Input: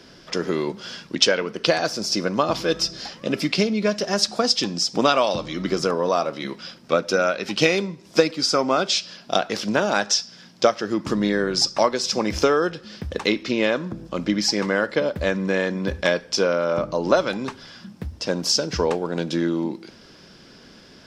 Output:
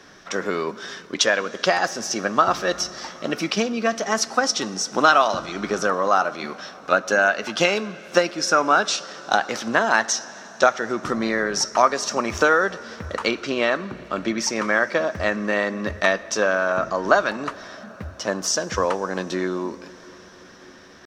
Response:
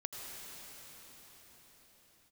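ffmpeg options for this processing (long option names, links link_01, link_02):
-filter_complex "[0:a]asetrate=48091,aresample=44100,atempo=0.917004,equalizer=frequency=1300:width=1:gain=10.5,asplit=2[link_01][link_02];[1:a]atrim=start_sample=2205,adelay=10[link_03];[link_02][link_03]afir=irnorm=-1:irlink=0,volume=-16.5dB[link_04];[link_01][link_04]amix=inputs=2:normalize=0,volume=-3.5dB"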